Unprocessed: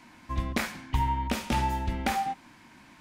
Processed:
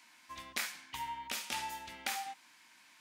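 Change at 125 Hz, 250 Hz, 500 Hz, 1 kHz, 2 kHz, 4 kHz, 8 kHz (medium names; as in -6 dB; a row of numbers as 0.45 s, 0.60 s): -30.5 dB, -22.5 dB, -16.0 dB, -12.0 dB, -5.5 dB, -2.0 dB, 0.0 dB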